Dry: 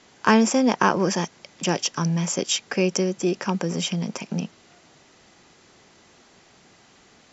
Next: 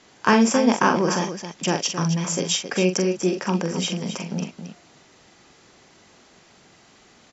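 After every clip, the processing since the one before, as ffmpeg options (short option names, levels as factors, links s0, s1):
-af "aecho=1:1:43.73|268.2:0.447|0.316"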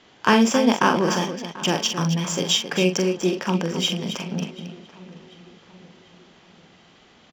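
-filter_complex "[0:a]equalizer=f=3200:w=3.3:g=7.5,asplit=2[s0][s1];[s1]adelay=738,lowpass=f=4200:p=1,volume=0.126,asplit=2[s2][s3];[s3]adelay=738,lowpass=f=4200:p=1,volume=0.52,asplit=2[s4][s5];[s5]adelay=738,lowpass=f=4200:p=1,volume=0.52,asplit=2[s6][s7];[s7]adelay=738,lowpass=f=4200:p=1,volume=0.52[s8];[s0][s2][s4][s6][s8]amix=inputs=5:normalize=0,adynamicsmooth=sensitivity=6.5:basefreq=4700"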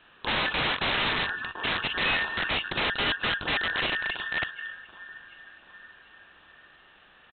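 -af "afftfilt=real='real(if(between(b,1,1012),(2*floor((b-1)/92)+1)*92-b,b),0)':imag='imag(if(between(b,1,1012),(2*floor((b-1)/92)+1)*92-b,b),0)*if(between(b,1,1012),-1,1)':win_size=2048:overlap=0.75,aresample=8000,aeval=exprs='(mod(8.91*val(0)+1,2)-1)/8.91':c=same,aresample=44100,volume=0.75"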